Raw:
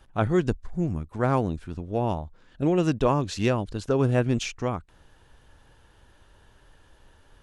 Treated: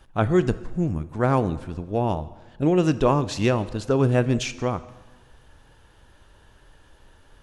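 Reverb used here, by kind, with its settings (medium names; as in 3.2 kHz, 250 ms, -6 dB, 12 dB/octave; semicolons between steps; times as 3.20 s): plate-style reverb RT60 1.3 s, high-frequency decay 0.85×, DRR 14 dB; trim +2.5 dB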